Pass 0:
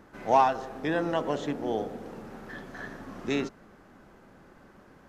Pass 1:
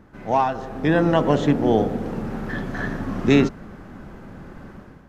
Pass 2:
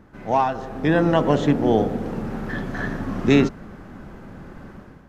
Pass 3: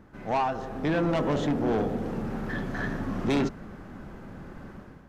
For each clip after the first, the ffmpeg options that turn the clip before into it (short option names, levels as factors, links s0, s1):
-af "bass=f=250:g=9,treble=f=4000:g=-4,dynaudnorm=f=470:g=3:m=3.55"
-af anull
-af "asoftclip=type=tanh:threshold=0.133,volume=0.708"